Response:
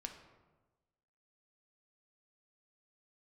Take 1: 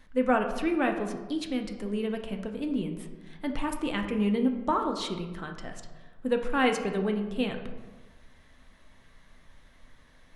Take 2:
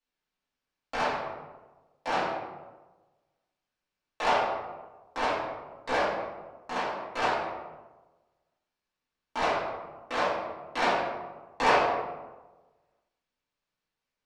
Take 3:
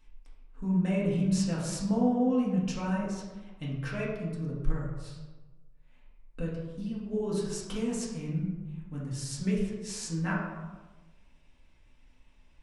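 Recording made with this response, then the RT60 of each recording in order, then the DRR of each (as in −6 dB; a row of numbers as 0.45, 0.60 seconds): 1; 1.2, 1.2, 1.2 seconds; 3.5, −10.5, −6.0 decibels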